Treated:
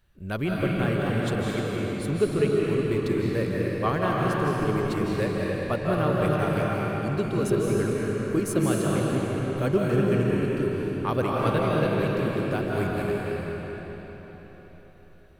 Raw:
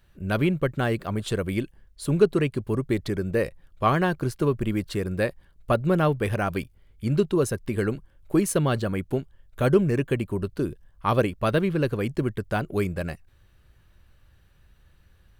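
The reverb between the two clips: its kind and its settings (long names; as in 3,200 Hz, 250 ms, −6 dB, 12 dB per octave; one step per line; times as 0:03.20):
comb and all-pass reverb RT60 4.5 s, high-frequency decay 0.85×, pre-delay 120 ms, DRR −4.5 dB
level −5.5 dB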